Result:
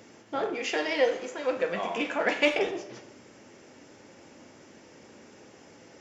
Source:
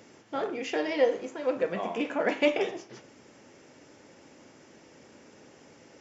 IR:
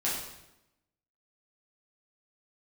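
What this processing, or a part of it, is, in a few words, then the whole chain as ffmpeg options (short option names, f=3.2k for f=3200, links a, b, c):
saturated reverb return: -filter_complex "[0:a]asplit=2[a][b];[1:a]atrim=start_sample=2205[c];[b][c]afir=irnorm=-1:irlink=0,asoftclip=type=tanh:threshold=-19dB,volume=-13.5dB[d];[a][d]amix=inputs=2:normalize=0,asettb=1/sr,asplit=3[e][f][g];[e]atrim=end=0.544[h];[f]atrim=start=0.54:end=2.59,asetpts=PTS-STARTPTS,afade=t=in:d=0.004:c=qsin,afade=t=out:st=2.046:d=0.004:c=qsin,tiltshelf=f=790:g=-4.5[i];[g]atrim=start=2.586[j];[h][i]acrossfade=d=0.004:c1=hsin:c2=qsin[k];[k][j]acrossfade=d=0.004:c1=qsin:c2=hsin"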